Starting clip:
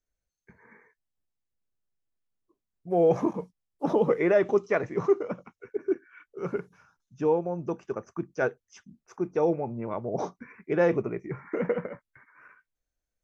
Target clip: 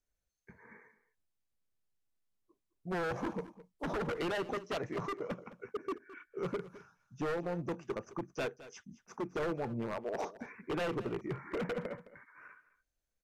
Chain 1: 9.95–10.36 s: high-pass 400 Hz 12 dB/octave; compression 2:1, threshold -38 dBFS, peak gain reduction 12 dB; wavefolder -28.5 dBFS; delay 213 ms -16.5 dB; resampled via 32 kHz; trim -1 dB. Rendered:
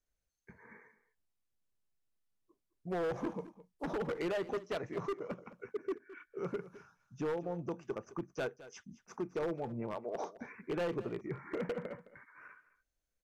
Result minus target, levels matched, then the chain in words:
compression: peak gain reduction +3 dB
9.95–10.36 s: high-pass 400 Hz 12 dB/octave; compression 2:1, threshold -32 dBFS, peak gain reduction 9 dB; wavefolder -28.5 dBFS; delay 213 ms -16.5 dB; resampled via 32 kHz; trim -1 dB

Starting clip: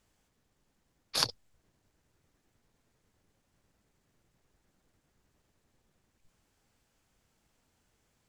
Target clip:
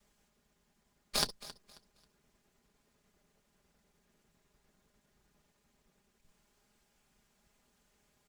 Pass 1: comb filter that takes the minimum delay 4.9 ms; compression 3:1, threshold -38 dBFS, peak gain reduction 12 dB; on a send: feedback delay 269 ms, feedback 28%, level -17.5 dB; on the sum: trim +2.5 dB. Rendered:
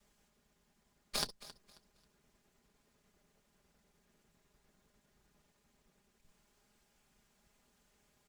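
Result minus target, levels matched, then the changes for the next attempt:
compression: peak gain reduction +5 dB
change: compression 3:1, threshold -30.5 dBFS, peak gain reduction 7 dB

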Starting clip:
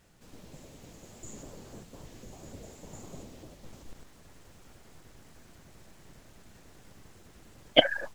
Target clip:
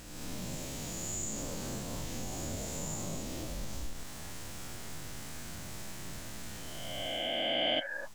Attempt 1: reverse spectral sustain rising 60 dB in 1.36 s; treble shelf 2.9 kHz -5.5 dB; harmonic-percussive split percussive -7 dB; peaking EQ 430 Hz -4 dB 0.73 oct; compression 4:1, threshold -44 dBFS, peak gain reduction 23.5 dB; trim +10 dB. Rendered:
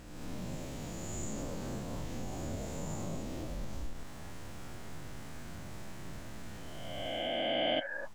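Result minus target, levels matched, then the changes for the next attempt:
8 kHz band -6.5 dB
change: treble shelf 2.9 kHz +6 dB

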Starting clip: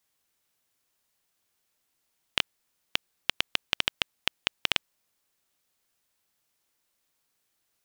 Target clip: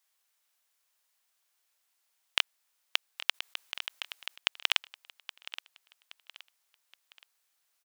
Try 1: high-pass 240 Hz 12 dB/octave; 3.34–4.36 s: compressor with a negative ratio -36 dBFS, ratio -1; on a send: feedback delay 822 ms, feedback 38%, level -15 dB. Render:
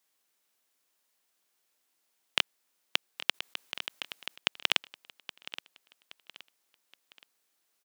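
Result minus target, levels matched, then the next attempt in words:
250 Hz band +13.5 dB
high-pass 710 Hz 12 dB/octave; 3.34–4.36 s: compressor with a negative ratio -36 dBFS, ratio -1; on a send: feedback delay 822 ms, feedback 38%, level -15 dB

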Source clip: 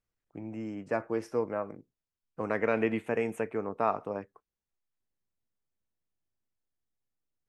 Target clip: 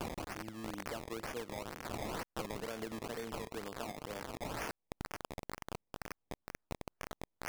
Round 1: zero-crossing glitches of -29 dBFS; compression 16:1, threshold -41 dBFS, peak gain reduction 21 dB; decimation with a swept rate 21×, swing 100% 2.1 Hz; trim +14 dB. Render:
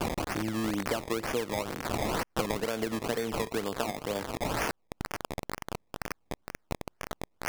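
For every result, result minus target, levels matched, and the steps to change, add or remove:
compression: peak gain reduction -10.5 dB; zero-crossing glitches: distortion -8 dB
change: compression 16:1, threshold -52 dBFS, peak gain reduction 31 dB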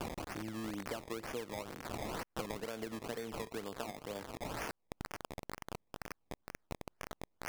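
zero-crossing glitches: distortion -8 dB
change: zero-crossing glitches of -21 dBFS

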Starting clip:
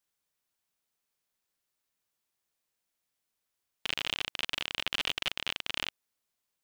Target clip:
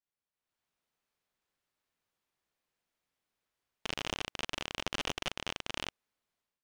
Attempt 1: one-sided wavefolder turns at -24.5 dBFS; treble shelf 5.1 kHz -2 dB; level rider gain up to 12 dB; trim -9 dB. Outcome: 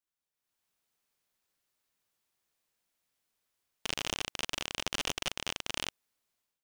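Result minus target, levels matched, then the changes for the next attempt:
8 kHz band +4.5 dB
change: treble shelf 5.1 kHz -13.5 dB

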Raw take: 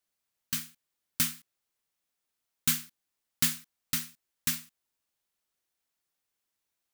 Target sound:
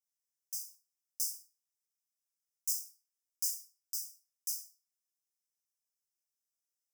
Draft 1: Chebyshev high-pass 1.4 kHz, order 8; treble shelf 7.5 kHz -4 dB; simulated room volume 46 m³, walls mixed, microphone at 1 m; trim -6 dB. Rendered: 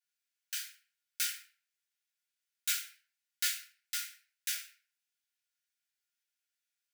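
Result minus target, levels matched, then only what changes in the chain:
4 kHz band +6.5 dB
change: Chebyshev high-pass 5 kHz, order 8

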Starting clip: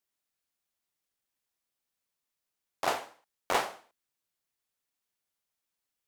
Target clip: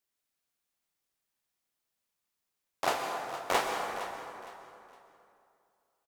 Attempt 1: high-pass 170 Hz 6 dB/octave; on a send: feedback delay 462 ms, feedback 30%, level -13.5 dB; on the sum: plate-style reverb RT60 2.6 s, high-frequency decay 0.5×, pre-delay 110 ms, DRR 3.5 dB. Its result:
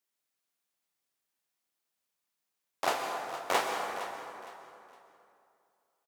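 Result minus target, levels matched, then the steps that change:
125 Hz band -4.0 dB
remove: high-pass 170 Hz 6 dB/octave

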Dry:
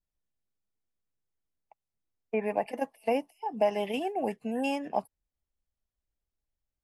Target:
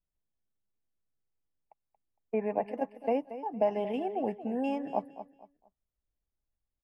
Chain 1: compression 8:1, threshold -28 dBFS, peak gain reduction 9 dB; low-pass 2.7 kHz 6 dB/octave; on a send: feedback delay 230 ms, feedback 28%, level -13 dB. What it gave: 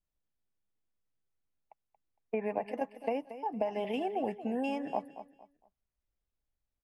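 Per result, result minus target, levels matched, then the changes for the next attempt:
compression: peak gain reduction +9 dB; 2 kHz band +5.0 dB
remove: compression 8:1, threshold -28 dBFS, peak gain reduction 9 dB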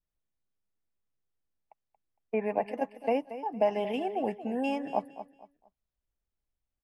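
2 kHz band +4.5 dB
change: low-pass 950 Hz 6 dB/octave

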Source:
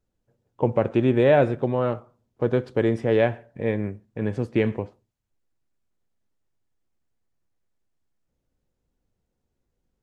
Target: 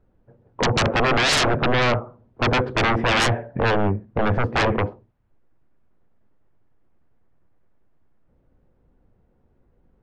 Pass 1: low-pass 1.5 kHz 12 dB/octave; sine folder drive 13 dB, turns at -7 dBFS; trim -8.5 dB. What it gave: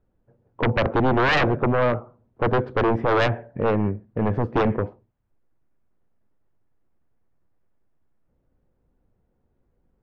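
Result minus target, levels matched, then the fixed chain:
sine folder: distortion -12 dB
low-pass 1.5 kHz 12 dB/octave; sine folder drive 20 dB, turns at -7 dBFS; trim -8.5 dB

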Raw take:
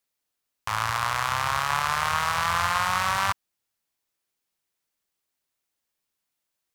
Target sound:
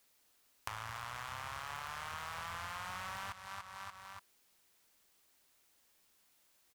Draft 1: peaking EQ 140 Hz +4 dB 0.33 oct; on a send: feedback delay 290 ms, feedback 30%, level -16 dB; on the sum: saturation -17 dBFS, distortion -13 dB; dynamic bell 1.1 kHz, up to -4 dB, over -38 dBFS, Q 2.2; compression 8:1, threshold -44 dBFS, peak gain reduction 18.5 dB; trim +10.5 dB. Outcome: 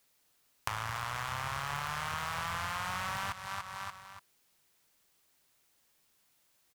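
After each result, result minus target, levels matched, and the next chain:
compression: peak gain reduction -7 dB; 125 Hz band +2.5 dB
peaking EQ 140 Hz +4 dB 0.33 oct; on a send: feedback delay 290 ms, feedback 30%, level -16 dB; on the sum: saturation -17 dBFS, distortion -13 dB; dynamic bell 1.1 kHz, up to -4 dB, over -38 dBFS, Q 2.2; compression 8:1, threshold -52 dBFS, peak gain reduction 25.5 dB; trim +10.5 dB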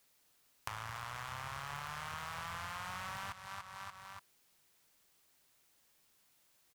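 125 Hz band +3.0 dB
peaking EQ 140 Hz -6 dB 0.33 oct; on a send: feedback delay 290 ms, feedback 30%, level -16 dB; on the sum: saturation -17 dBFS, distortion -13 dB; dynamic bell 1.1 kHz, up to -4 dB, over -38 dBFS, Q 2.2; compression 8:1, threshold -52 dBFS, peak gain reduction 25.5 dB; trim +10.5 dB

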